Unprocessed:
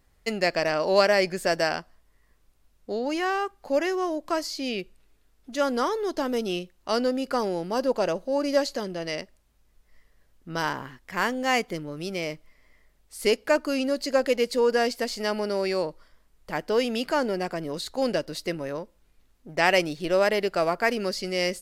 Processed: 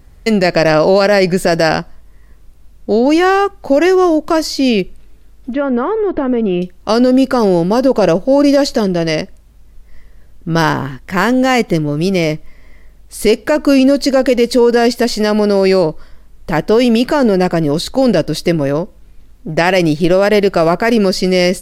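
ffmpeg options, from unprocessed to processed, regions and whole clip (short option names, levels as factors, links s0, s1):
-filter_complex "[0:a]asettb=1/sr,asplit=3[s0][s1][s2];[s0]atrim=end=5.534[s3];[s1]atrim=start=5.53:end=6.62,asetpts=PTS-STARTPTS,afade=t=in:d=0.004:c=qsin,afade=t=out:st=1.086:d=0.004:c=qsin,lowpass=f=2500:w=0.5412,lowpass=f=2500:w=1.3066,acompressor=threshold=0.0316:ratio=3:attack=3.2:release=140:knee=1:detection=peak[s4];[s2]atrim=start=6.616[s5];[s3][s4]acrossfade=d=0.004:c1=hsin:c2=qsin[s6];[s6][s5]acrossfade=d=0.004:c1=qsin:c2=hsin,lowshelf=f=370:g=10.5,alimiter=level_in=4.73:limit=0.891:release=50:level=0:latency=1,volume=0.891"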